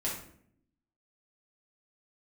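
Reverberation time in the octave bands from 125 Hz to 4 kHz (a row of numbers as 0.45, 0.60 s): 1.0, 1.0, 0.70, 0.55, 0.55, 0.40 s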